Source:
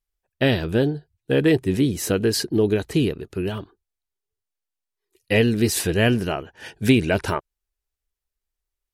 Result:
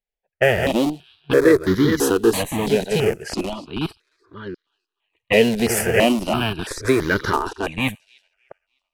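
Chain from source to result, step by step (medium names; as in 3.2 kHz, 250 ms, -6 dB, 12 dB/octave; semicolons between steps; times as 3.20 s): chunks repeated in reverse 568 ms, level -5 dB; in parallel at -4 dB: Schmitt trigger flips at -19.5 dBFS; on the sum: bass shelf 120 Hz -10.5 dB; on a send: feedback echo behind a high-pass 303 ms, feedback 50%, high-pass 3.6 kHz, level -19.5 dB; on the sum: level-controlled noise filter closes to 2.4 kHz, open at -17.5 dBFS; tone controls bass -5 dB, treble -3 dB; stepped phaser 3 Hz 320–2600 Hz; trim +6 dB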